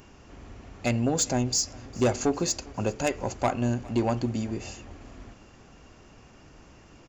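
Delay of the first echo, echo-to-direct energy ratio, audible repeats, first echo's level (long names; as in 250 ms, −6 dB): 404 ms, −22.0 dB, 3, −23.5 dB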